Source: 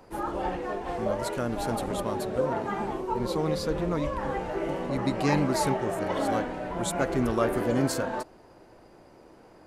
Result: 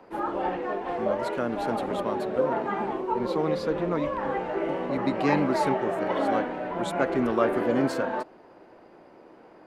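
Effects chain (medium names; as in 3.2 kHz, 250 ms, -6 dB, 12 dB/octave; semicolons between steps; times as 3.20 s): three-band isolator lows -15 dB, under 170 Hz, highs -15 dB, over 3.7 kHz; trim +2.5 dB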